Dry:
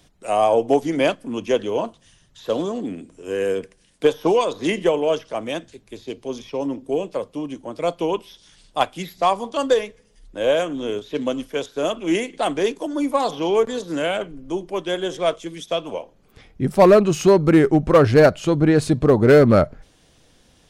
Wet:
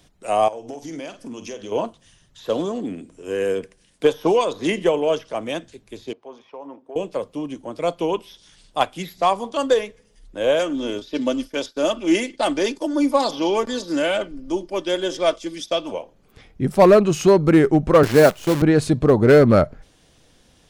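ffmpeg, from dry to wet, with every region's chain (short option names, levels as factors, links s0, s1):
-filter_complex "[0:a]asettb=1/sr,asplit=3[s0][s1][s2];[s0]atrim=end=0.484[s3];[s1]atrim=start=0.48:end=1.72,asetpts=PTS-STARTPTS,afade=t=in:d=0.004:c=qsin,afade=t=out:st=1.236:d=0.004:c=qsin,equalizer=f=5800:t=o:w=0.75:g=11.5,acompressor=threshold=0.0282:ratio=6:attack=3.2:release=140:knee=1:detection=peak,asplit=2[s4][s5];[s5]adelay=49,volume=0.316[s6];[s4][s6]amix=inputs=2:normalize=0,atrim=end_sample=54684[s7];[s2]atrim=start=1.716[s8];[s3][s7]acrossfade=d=0.004:c1=hsin:c2=qsin[s9];[s9][s8]acrossfade=d=0.004:c1=qsin:c2=hsin,asettb=1/sr,asplit=3[s10][s11][s12];[s10]atrim=end=6.134[s13];[s11]atrim=start=6.13:end=6.96,asetpts=PTS-STARTPTS,afade=t=in:d=0.004:c=qsin,afade=t=out:st=0.826:d=0.004:c=qsin,bandpass=f=930:t=q:w=1.5,acompressor=threshold=0.0251:ratio=4:attack=3.2:release=140:knee=1:detection=peak[s14];[s12]atrim=start=6.956[s15];[s13][s14]acrossfade=d=0.004:c1=hsin:c2=qsin[s16];[s16][s15]acrossfade=d=0.004:c1=qsin:c2=hsin,asettb=1/sr,asplit=3[s17][s18][s19];[s17]atrim=end=10.594[s20];[s18]atrim=start=10.59:end=15.92,asetpts=PTS-STARTPTS,afade=t=in:d=0.004:c=qsin,afade=t=out:st=5.326:d=0.004:c=qsin,equalizer=f=4900:t=o:w=0.39:g=11,aecho=1:1:3.4:0.51,atrim=end_sample=235053,agate=range=0.0224:threshold=0.0141:ratio=3:release=100:detection=peak[s21];[s19]atrim=start=15.916[s22];[s20][s21]acrossfade=d=0.004:c1=hsin:c2=qsin[s23];[s23][s22]acrossfade=d=0.004:c1=qsin:c2=hsin,asettb=1/sr,asplit=3[s24][s25][s26];[s24]atrim=end=18.034[s27];[s25]atrim=start=18.03:end=18.62,asetpts=PTS-STARTPTS,afade=t=in:d=0.004:c=qsin,afade=t=out:st=0.586:d=0.004:c=qsin,highpass=f=140:w=0.5412,highpass=f=140:w=1.3066,acrusher=bits=5:dc=4:mix=0:aa=0.000001[s28];[s26]atrim=start=18.616[s29];[s27][s28]acrossfade=d=0.004:c1=hsin:c2=qsin[s30];[s30][s29]acrossfade=d=0.004:c1=qsin:c2=hsin"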